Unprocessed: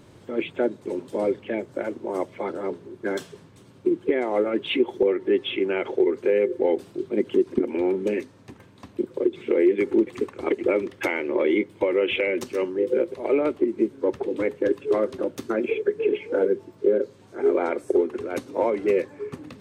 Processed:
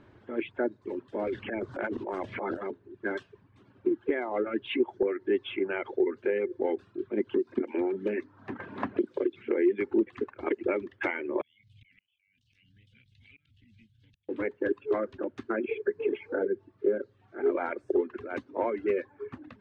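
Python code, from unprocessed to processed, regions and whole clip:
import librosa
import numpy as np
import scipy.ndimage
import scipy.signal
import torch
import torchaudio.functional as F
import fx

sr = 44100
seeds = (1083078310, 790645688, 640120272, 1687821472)

y = fx.chain(x, sr, fx.transient(attack_db=-7, sustain_db=12),
    fx.band_squash(depth_pct=100), at=(1.27, 2.71))
y = fx.chain(y, sr, fx.highpass(hz=100.0, slope=12),
    fx.hum_notches(base_hz=60, count=5),
    fx.band_squash(depth_pct=100), at=(7.3, 9.4))
y = fx.chain(y, sr, fx.ellip_bandstop(low_hz=130.0, high_hz=3000.0, order=3, stop_db=50),
    fx.gate_flip(shuts_db=-38.0, range_db=-38),
    fx.pre_swell(db_per_s=29.0), at=(11.41, 14.29))
y = fx.chain(y, sr, fx.high_shelf(hz=4400.0, db=-7.5),
    fx.notch(hz=1000.0, q=5.3), at=(16.35, 17.46))
y = scipy.signal.sosfilt(scipy.signal.butter(2, 2500.0, 'lowpass', fs=sr, output='sos'), y)
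y = fx.dereverb_blind(y, sr, rt60_s=0.71)
y = fx.graphic_eq_31(y, sr, hz=(160, 500, 1600), db=(-10, -5, 6))
y = F.gain(torch.from_numpy(y), -4.0).numpy()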